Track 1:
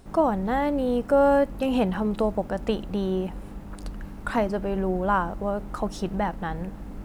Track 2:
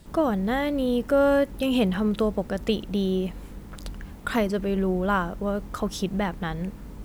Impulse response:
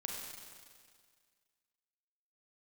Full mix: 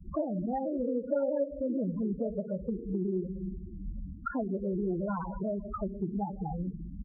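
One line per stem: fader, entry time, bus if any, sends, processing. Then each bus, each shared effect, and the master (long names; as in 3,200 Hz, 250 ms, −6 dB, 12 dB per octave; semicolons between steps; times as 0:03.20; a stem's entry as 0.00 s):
−7.0 dB, 0.00 s, no send, three sine waves on the formant tracks
+2.5 dB, 0.8 ms, send −9 dB, low-pass filter 1,500 Hz 12 dB per octave; pitch modulation by a square or saw wave saw down 4.6 Hz, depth 160 cents; automatic ducking −8 dB, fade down 0.20 s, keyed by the first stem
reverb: on, RT60 1.9 s, pre-delay 32 ms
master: spectral peaks only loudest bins 8; downward compressor 2.5 to 1, threshold −32 dBFS, peak gain reduction 12 dB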